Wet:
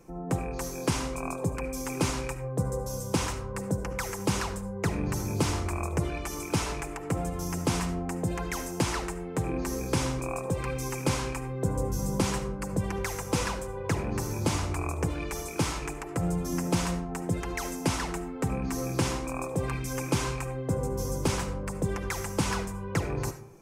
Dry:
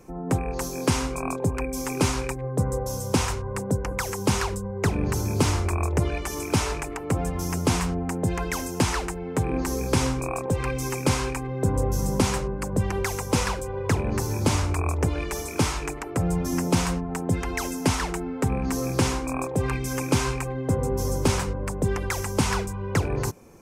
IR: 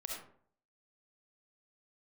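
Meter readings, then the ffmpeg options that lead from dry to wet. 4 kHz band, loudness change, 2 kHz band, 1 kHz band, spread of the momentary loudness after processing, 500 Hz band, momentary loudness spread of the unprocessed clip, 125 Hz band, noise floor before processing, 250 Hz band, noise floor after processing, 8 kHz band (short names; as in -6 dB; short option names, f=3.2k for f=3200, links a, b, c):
-4.5 dB, -5.0 dB, -4.5 dB, -4.5 dB, 5 LU, -4.5 dB, 5 LU, -5.0 dB, -33 dBFS, -4.5 dB, -38 dBFS, -4.5 dB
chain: -filter_complex "[0:a]asplit=2[a][b];[1:a]atrim=start_sample=2205,adelay=6[c];[b][c]afir=irnorm=-1:irlink=0,volume=-7.5dB[d];[a][d]amix=inputs=2:normalize=0,volume=-5dB"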